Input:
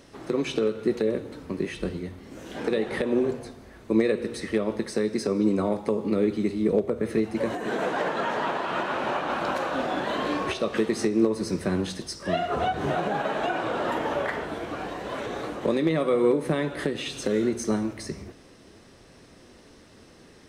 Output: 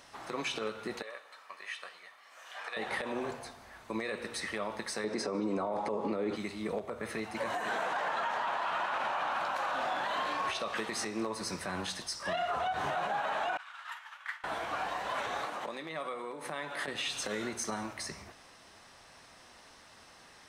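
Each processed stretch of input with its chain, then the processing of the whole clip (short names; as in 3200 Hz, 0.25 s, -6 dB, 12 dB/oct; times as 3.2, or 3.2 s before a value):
1.02–2.77 HPF 1100 Hz + high shelf 3100 Hz -8.5 dB + comb 1.7 ms, depth 35%
5.04–6.36 LPF 8700 Hz + bell 410 Hz +12.5 dB 2.8 oct
13.57–14.44 HPF 1300 Hz 24 dB/oct + expander -29 dBFS
15.45–16.88 HPF 150 Hz + compressor 3:1, threshold -31 dBFS
whole clip: resonant low shelf 570 Hz -11.5 dB, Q 1.5; limiter -25 dBFS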